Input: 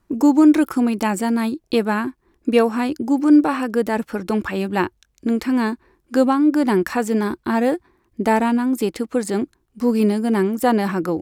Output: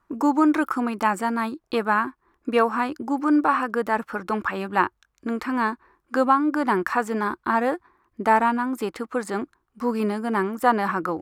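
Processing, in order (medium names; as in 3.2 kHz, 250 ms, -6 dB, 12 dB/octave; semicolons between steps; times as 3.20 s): peaking EQ 1.2 kHz +15 dB 1.5 oct; trim -9 dB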